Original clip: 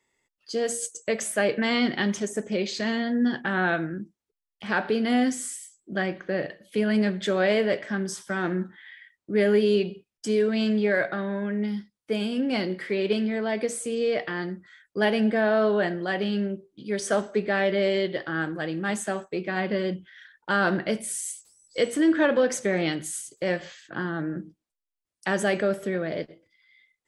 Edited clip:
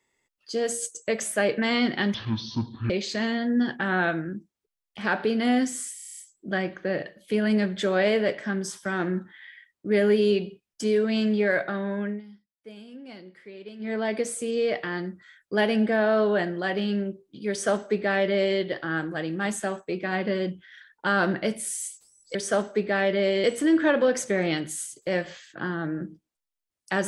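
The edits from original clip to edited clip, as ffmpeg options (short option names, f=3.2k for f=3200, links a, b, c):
-filter_complex "[0:a]asplit=14[a][b][c][d][e][f][g][h][i][j][k][l][m][n];[a]atrim=end=2.144[o];[b]atrim=start=2.14:end=2.55,asetpts=PTS-STARTPTS,asetrate=23814,aresample=44100,atrim=end_sample=33483,asetpts=PTS-STARTPTS[p];[c]atrim=start=2.546:end=5.642[q];[d]atrim=start=5.608:end=5.642[r];[e]atrim=start=5.608:end=5.642[s];[f]atrim=start=5.608:end=5.642[t];[g]atrim=start=5.608:end=5.642[u];[h]atrim=start=5.608:end=5.642[v];[i]atrim=start=5.608:end=5.642[w];[j]atrim=start=5.608:end=11.65,asetpts=PTS-STARTPTS,afade=t=out:st=5.852:d=0.19:c=qsin:silence=0.141254[x];[k]atrim=start=11.65:end=13.23,asetpts=PTS-STARTPTS,volume=-17dB[y];[l]atrim=start=13.23:end=21.792,asetpts=PTS-STARTPTS,afade=t=in:d=0.19:c=qsin:silence=0.141254[z];[m]atrim=start=16.938:end=18.032[aa];[n]atrim=start=21.788[ab];[o][p]acrossfade=d=0.004:c1=hsin:c2=hsin[ac];[ac][q]acrossfade=d=0.004:c1=hsin:c2=hsin[ad];[ad][r]acrossfade=d=0.004:c1=hsin:c2=hsin[ae];[ae][s]acrossfade=d=0.004:c1=hsin:c2=hsin[af];[af][t]acrossfade=d=0.004:c1=hsin:c2=hsin[ag];[ag][u]acrossfade=d=0.004:c1=hsin:c2=hsin[ah];[ah][v]acrossfade=d=0.004:c1=hsin:c2=hsin[ai];[ai][w]acrossfade=d=0.004:c1=hsin:c2=hsin[aj];[x][y][z]concat=n=3:v=0:a=1[ak];[aj][ak]acrossfade=d=0.004:c1=hsin:c2=hsin[al];[al][aa]acrossfade=d=0.004:c1=hsin:c2=hsin[am];[am][ab]acrossfade=d=0.004:c1=hsin:c2=hsin"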